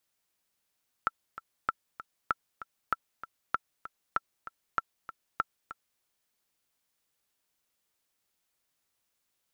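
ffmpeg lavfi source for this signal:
-f lavfi -i "aevalsrc='pow(10,(-13-14.5*gte(mod(t,2*60/194),60/194))/20)*sin(2*PI*1340*mod(t,60/194))*exp(-6.91*mod(t,60/194)/0.03)':d=4.94:s=44100"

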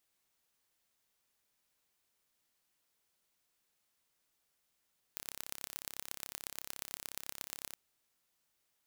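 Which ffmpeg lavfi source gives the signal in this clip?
-f lavfi -i "aevalsrc='0.266*eq(mod(n,1301),0)*(0.5+0.5*eq(mod(n,5204),0))':d=2.59:s=44100"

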